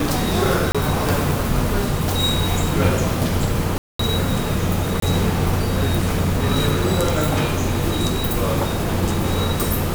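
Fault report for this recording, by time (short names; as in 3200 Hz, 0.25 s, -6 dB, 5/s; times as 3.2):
0.72–0.75 gap 26 ms
3.78–3.99 gap 0.214 s
5–5.02 gap 23 ms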